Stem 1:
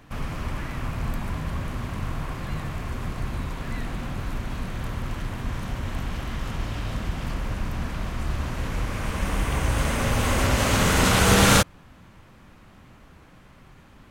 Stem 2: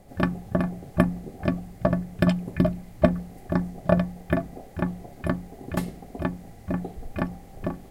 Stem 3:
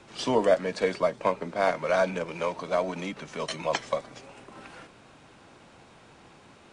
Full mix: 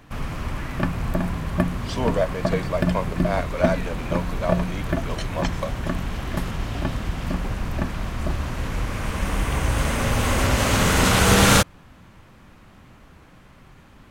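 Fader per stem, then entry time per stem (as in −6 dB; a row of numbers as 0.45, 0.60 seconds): +1.5, −1.5, −1.0 decibels; 0.00, 0.60, 1.70 seconds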